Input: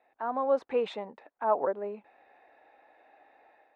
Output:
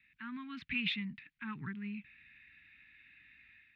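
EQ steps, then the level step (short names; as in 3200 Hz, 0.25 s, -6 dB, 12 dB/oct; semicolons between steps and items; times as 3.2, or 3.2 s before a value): Chebyshev band-stop 160–2300 Hz, order 3; air absorption 370 m; +17.5 dB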